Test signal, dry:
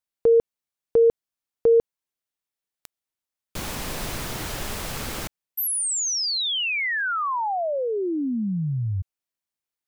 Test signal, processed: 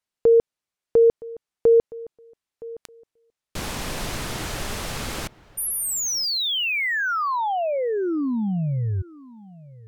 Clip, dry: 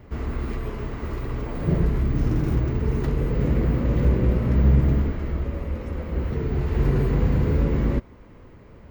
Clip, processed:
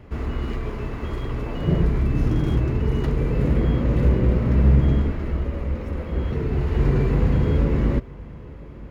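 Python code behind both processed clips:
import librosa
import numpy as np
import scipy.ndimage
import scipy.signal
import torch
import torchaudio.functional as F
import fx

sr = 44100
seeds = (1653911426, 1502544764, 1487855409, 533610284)

y = fx.echo_filtered(x, sr, ms=967, feedback_pct=19, hz=2300.0, wet_db=-20.5)
y = np.interp(np.arange(len(y)), np.arange(len(y))[::2], y[::2])
y = y * 10.0 ** (1.5 / 20.0)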